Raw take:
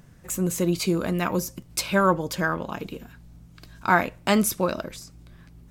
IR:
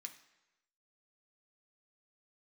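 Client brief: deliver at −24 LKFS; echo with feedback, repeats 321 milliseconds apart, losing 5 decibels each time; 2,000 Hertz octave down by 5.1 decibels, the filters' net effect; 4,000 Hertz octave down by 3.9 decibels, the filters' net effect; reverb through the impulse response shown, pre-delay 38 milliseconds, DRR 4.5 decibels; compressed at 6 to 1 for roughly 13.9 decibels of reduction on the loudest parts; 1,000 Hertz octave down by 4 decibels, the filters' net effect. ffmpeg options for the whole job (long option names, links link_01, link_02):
-filter_complex "[0:a]equalizer=frequency=1000:width_type=o:gain=-3.5,equalizer=frequency=2000:width_type=o:gain=-5,equalizer=frequency=4000:width_type=o:gain=-3.5,acompressor=threshold=-32dB:ratio=6,aecho=1:1:321|642|963|1284|1605|1926|2247:0.562|0.315|0.176|0.0988|0.0553|0.031|0.0173,asplit=2[link_01][link_02];[1:a]atrim=start_sample=2205,adelay=38[link_03];[link_02][link_03]afir=irnorm=-1:irlink=0,volume=1dB[link_04];[link_01][link_04]amix=inputs=2:normalize=0,volume=11dB"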